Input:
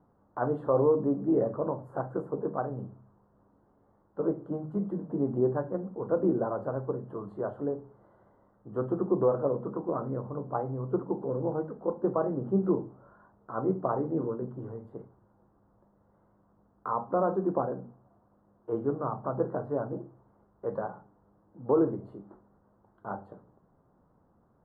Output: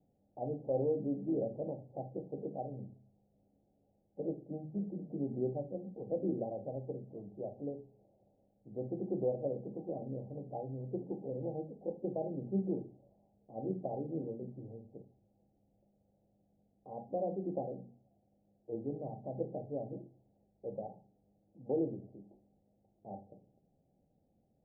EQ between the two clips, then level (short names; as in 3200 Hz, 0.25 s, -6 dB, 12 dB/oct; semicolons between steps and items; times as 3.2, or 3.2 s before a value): rippled Chebyshev low-pass 810 Hz, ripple 3 dB; air absorption 460 m; notches 60/120/180/240/300/360/420 Hz; -5.5 dB